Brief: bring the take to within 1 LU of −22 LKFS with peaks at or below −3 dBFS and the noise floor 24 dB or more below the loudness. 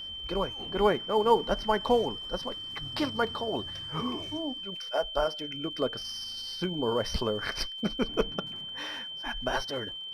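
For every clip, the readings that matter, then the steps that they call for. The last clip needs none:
crackle rate 23 per second; interfering tone 3,100 Hz; level of the tone −37 dBFS; integrated loudness −30.5 LKFS; sample peak −10.5 dBFS; target loudness −22.0 LKFS
→ click removal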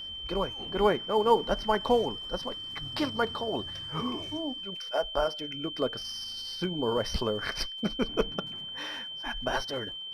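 crackle rate 0.099 per second; interfering tone 3,100 Hz; level of the tone −37 dBFS
→ notch filter 3,100 Hz, Q 30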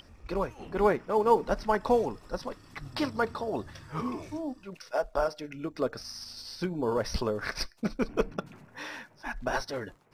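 interfering tone none found; integrated loudness −31.5 LKFS; sample peak −10.5 dBFS; target loudness −22.0 LKFS
→ level +9.5 dB
brickwall limiter −3 dBFS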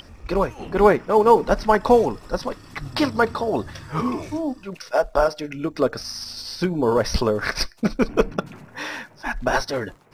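integrated loudness −22.5 LKFS; sample peak −3.0 dBFS; background noise floor −48 dBFS

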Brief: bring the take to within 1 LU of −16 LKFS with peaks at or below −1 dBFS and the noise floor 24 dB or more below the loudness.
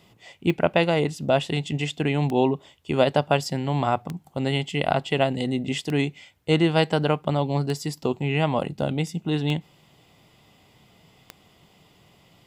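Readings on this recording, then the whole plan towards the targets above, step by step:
number of clicks 7; integrated loudness −24.5 LKFS; sample peak −5.0 dBFS; target loudness −16.0 LKFS
→ click removal
level +8.5 dB
brickwall limiter −1 dBFS

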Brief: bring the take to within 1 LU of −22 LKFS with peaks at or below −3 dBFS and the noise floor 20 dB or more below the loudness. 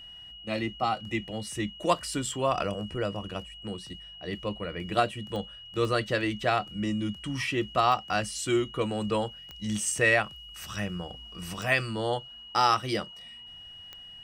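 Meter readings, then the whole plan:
number of clicks 6; interfering tone 2,900 Hz; level of the tone −44 dBFS; integrated loudness −29.5 LKFS; sample peak −9.0 dBFS; target loudness −22.0 LKFS
→ click removal
notch filter 2,900 Hz, Q 30
level +7.5 dB
brickwall limiter −3 dBFS

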